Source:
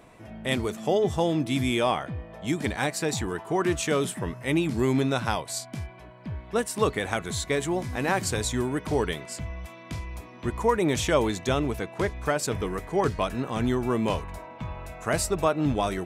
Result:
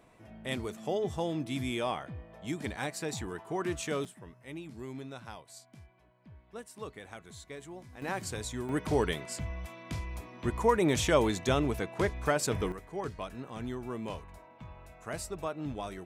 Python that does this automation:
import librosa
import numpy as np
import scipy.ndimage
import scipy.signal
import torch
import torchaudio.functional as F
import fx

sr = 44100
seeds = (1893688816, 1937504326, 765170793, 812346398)

y = fx.gain(x, sr, db=fx.steps((0.0, -8.5), (4.05, -18.5), (8.02, -10.0), (8.69, -2.5), (12.72, -12.5)))